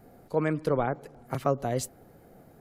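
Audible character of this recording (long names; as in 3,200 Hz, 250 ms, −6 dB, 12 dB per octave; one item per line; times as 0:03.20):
background noise floor −56 dBFS
spectral slope −5.0 dB per octave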